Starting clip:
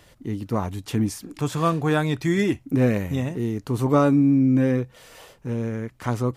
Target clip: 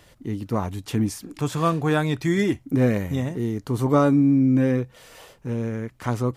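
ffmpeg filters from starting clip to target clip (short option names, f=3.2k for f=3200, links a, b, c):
-filter_complex "[0:a]asettb=1/sr,asplit=3[a][b][c];[a]atrim=end=2.294[d];[b]atrim=start=2.29:end=4.57,asetpts=PTS-STARTPTS,afade=t=in:d=0.004:c=qsin,afade=t=out:st=2.276:d=0.004:c=qsin,bandreject=f=2.6k:w=11[e];[c]atrim=start=4.566[f];[d][e]acrossfade=d=0.004:c1=hsin:c2=qsin[g];[g][f]acrossfade=d=0.004:c1=qsin:c2=hsin"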